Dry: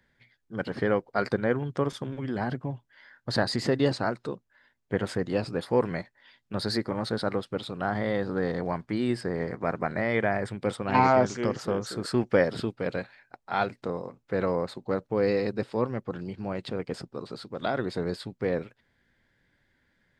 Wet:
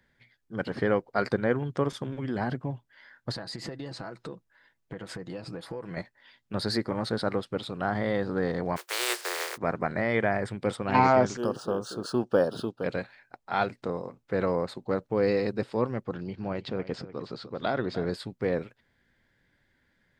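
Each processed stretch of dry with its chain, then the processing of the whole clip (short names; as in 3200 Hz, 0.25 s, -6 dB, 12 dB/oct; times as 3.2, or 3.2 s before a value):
3.32–5.97 compressor, threshold -35 dBFS + comb 6.1 ms, depth 38%
8.76–9.56 spectral contrast lowered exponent 0.25 + rippled Chebyshev high-pass 350 Hz, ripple 3 dB
11.37–12.84 Butterworth band-stop 2100 Hz, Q 1.6 + low shelf 110 Hz -12 dB + decimation joined by straight lines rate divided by 3×
16.12–18.11 LPF 6400 Hz 24 dB/oct + echo 0.299 s -14.5 dB
whole clip: dry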